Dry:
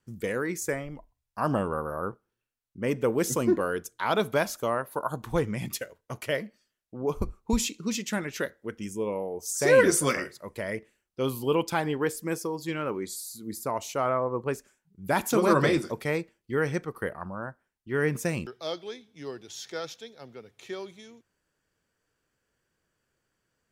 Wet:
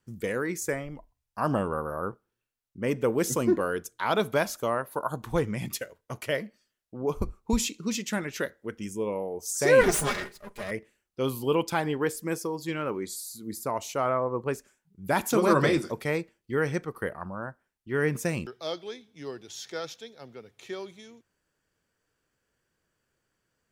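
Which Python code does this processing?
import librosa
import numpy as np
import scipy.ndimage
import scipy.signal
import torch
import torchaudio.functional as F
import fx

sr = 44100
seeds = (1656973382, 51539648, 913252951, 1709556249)

y = fx.lower_of_two(x, sr, delay_ms=4.9, at=(9.81, 10.71))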